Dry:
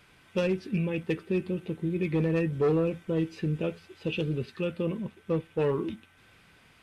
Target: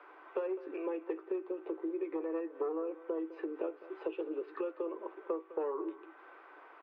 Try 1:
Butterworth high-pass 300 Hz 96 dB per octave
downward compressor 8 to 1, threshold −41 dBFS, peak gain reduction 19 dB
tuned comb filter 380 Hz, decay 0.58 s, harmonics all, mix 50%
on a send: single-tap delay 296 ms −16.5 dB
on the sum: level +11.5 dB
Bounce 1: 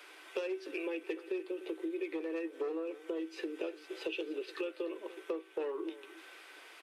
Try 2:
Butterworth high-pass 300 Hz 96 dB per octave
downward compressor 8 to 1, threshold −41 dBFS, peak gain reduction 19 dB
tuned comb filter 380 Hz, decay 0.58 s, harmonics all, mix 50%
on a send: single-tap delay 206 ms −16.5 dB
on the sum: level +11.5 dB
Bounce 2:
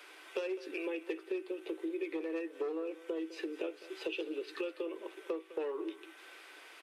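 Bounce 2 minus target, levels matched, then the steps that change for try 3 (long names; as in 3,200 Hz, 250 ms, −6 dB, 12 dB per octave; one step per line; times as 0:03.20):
1,000 Hz band −4.0 dB
add after downward compressor: low-pass with resonance 1,100 Hz, resonance Q 2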